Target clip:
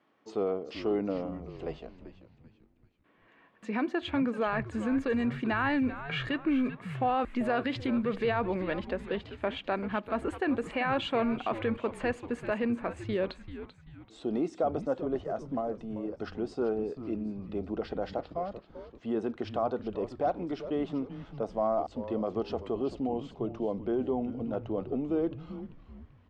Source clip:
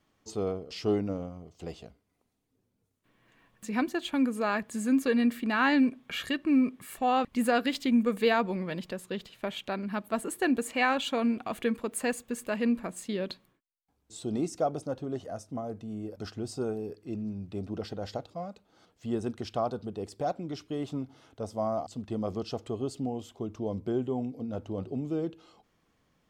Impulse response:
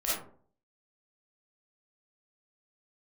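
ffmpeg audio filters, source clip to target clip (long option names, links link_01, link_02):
-filter_complex "[0:a]alimiter=limit=-24dB:level=0:latency=1:release=36,highpass=260,lowpass=2400,asplit=5[link_01][link_02][link_03][link_04][link_05];[link_02]adelay=388,afreqshift=-130,volume=-12dB[link_06];[link_03]adelay=776,afreqshift=-260,volume=-19.7dB[link_07];[link_04]adelay=1164,afreqshift=-390,volume=-27.5dB[link_08];[link_05]adelay=1552,afreqshift=-520,volume=-35.2dB[link_09];[link_01][link_06][link_07][link_08][link_09]amix=inputs=5:normalize=0,volume=4.5dB"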